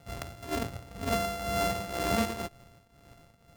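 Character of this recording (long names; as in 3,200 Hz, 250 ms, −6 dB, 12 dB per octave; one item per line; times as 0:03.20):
a buzz of ramps at a fixed pitch in blocks of 64 samples
tremolo triangle 2 Hz, depth 75%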